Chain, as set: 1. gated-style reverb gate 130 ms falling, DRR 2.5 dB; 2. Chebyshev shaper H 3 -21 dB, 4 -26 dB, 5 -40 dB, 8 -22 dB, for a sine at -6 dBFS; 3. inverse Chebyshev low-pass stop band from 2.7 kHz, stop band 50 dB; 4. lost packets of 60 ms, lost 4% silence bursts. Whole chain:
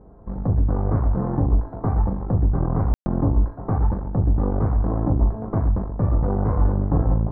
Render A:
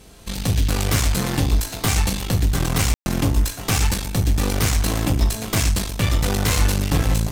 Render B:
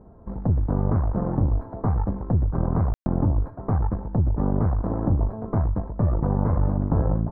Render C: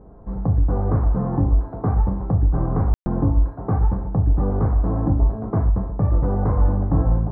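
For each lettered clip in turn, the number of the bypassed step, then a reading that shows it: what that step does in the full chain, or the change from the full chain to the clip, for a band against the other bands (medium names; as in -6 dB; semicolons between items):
3, 1 kHz band +2.0 dB; 1, crest factor change -1.5 dB; 2, crest factor change -2.0 dB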